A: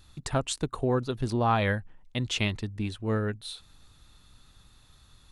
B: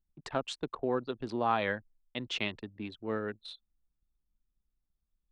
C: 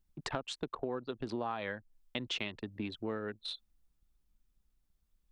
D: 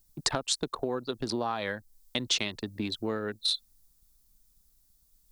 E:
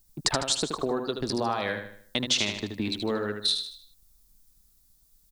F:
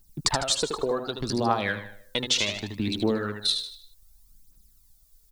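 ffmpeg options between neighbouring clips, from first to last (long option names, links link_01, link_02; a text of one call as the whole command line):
ffmpeg -i in.wav -filter_complex "[0:a]anlmdn=0.398,acrossover=split=210 5200:gain=0.158 1 0.112[link_01][link_02][link_03];[link_01][link_02][link_03]amix=inputs=3:normalize=0,volume=-3.5dB" out.wav
ffmpeg -i in.wav -af "acompressor=threshold=-41dB:ratio=6,volume=6.5dB" out.wav
ffmpeg -i in.wav -af "aexciter=amount=4.6:drive=4.3:freq=4000,volume=5.5dB" out.wav
ffmpeg -i in.wav -af "aecho=1:1:77|154|231|308|385:0.473|0.194|0.0795|0.0326|0.0134,volume=2.5dB" out.wav
ffmpeg -i in.wav -af "aphaser=in_gain=1:out_gain=1:delay=2.4:decay=0.54:speed=0.66:type=triangular" out.wav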